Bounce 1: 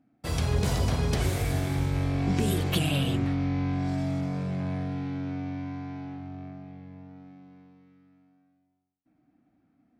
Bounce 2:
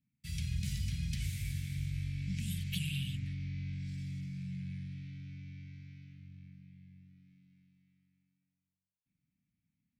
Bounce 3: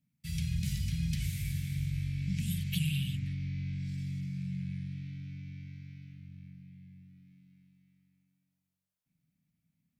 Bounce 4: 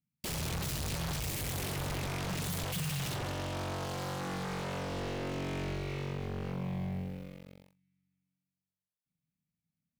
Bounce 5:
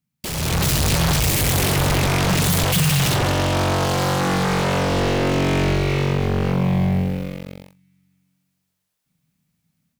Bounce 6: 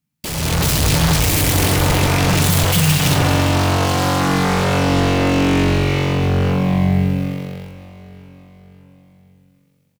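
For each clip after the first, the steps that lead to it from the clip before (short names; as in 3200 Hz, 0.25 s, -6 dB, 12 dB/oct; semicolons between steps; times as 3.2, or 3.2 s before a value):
elliptic band-stop 180–2200 Hz, stop band 70 dB; gain -8.5 dB
thirty-one-band EQ 160 Hz +7 dB, 630 Hz +6 dB, 12500 Hz +5 dB; gain +1.5 dB
sample leveller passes 5; wavefolder -29.5 dBFS
AGC gain up to 9.5 dB; gain +8 dB
feedback echo 0.574 s, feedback 52%, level -17.5 dB; FDN reverb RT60 1.6 s, low-frequency decay 1×, high-frequency decay 0.85×, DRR 7.5 dB; gain +2 dB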